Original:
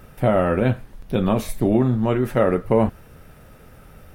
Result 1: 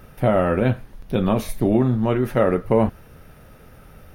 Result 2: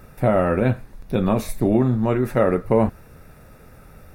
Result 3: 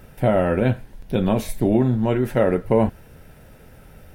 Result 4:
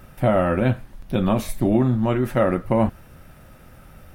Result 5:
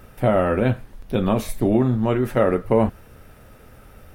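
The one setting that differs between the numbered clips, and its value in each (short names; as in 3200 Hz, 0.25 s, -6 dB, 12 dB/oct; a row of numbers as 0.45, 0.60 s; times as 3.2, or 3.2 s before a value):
notch, frequency: 7700, 3100, 1200, 440, 160 Hz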